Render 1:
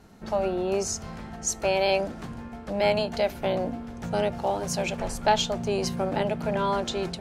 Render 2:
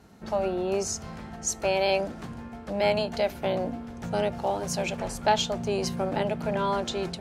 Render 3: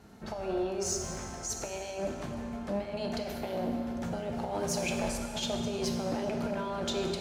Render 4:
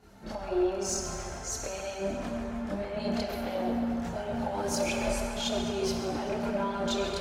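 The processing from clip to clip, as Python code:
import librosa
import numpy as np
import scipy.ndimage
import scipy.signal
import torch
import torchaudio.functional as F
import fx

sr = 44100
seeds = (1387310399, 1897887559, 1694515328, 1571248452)

y1 = scipy.signal.sosfilt(scipy.signal.butter(2, 42.0, 'highpass', fs=sr, output='sos'), x)
y1 = y1 * librosa.db_to_amplitude(-1.0)
y2 = fx.over_compress(y1, sr, threshold_db=-29.0, ratio=-0.5)
y2 = 10.0 ** (-19.5 / 20.0) * np.tanh(y2 / 10.0 ** (-19.5 / 20.0))
y2 = fx.rev_plate(y2, sr, seeds[0], rt60_s=2.2, hf_ratio=0.9, predelay_ms=0, drr_db=3.0)
y2 = y2 * librosa.db_to_amplitude(-4.0)
y3 = fx.chorus_voices(y2, sr, voices=4, hz=0.39, base_ms=28, depth_ms=2.6, mix_pct=65)
y3 = fx.echo_banded(y3, sr, ms=136, feedback_pct=80, hz=1300.0, wet_db=-4)
y3 = y3 * librosa.db_to_amplitude(3.5)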